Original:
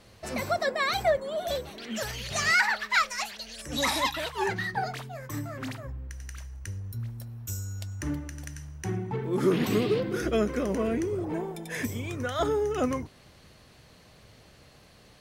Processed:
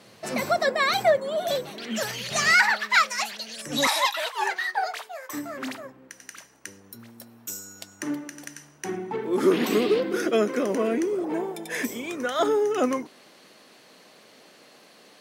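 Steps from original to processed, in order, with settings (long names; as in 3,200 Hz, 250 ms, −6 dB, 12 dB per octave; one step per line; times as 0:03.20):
high-pass filter 140 Hz 24 dB per octave, from 0:03.87 530 Hz, from 0:05.33 230 Hz
level +4.5 dB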